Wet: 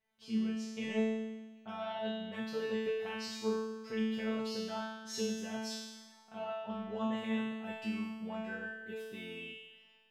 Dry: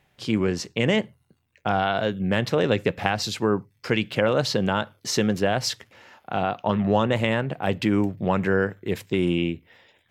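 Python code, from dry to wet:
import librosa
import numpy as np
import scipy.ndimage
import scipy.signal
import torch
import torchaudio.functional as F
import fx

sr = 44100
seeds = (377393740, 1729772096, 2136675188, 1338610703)

p1 = fx.comb_fb(x, sr, f0_hz=220.0, decay_s=1.2, harmonics='all', damping=0.0, mix_pct=100)
p2 = p1 + fx.echo_heads(p1, sr, ms=104, heads='first and second', feedback_pct=45, wet_db=-21.5, dry=0)
y = F.gain(torch.from_numpy(p2), 4.0).numpy()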